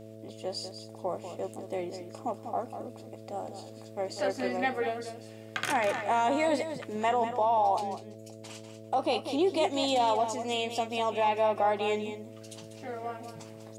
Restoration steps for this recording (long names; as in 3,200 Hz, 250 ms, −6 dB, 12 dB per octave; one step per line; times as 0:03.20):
hum removal 109.8 Hz, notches 6
echo removal 194 ms −9.5 dB